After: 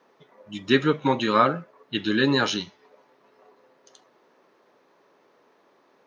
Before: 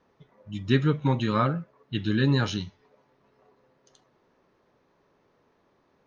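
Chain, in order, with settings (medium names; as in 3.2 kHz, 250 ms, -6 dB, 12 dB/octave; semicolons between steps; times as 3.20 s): high-pass 310 Hz 12 dB/octave; trim +7 dB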